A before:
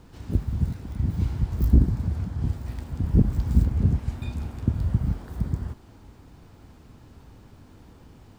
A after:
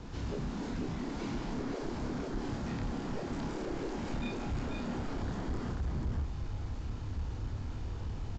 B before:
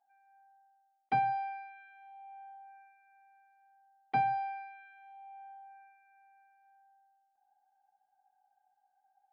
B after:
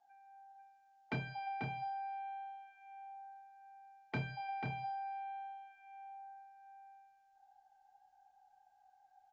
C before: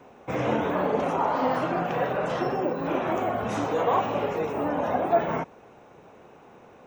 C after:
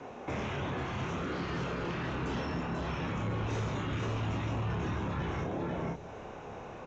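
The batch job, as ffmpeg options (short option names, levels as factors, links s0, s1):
-filter_complex "[0:a]acrossover=split=2800[s0][s1];[s1]acompressor=threshold=0.00224:ratio=4:attack=1:release=60[s2];[s0][s2]amix=inputs=2:normalize=0,asplit=2[s3][s4];[s4]aecho=0:1:490:0.562[s5];[s3][s5]amix=inputs=2:normalize=0,afftfilt=real='re*lt(hypot(re,im),0.158)':imag='im*lt(hypot(re,im),0.158)':win_size=1024:overlap=0.75,asplit=2[s6][s7];[s7]adelay=29,volume=0.596[s8];[s6][s8]amix=inputs=2:normalize=0,acrossover=split=460|3000[s9][s10][s11];[s10]acompressor=threshold=0.00562:ratio=6[s12];[s9][s12][s11]amix=inputs=3:normalize=0,asubboost=boost=3:cutoff=110,aresample=16000,asoftclip=type=tanh:threshold=0.0251,aresample=44100,volume=1.68"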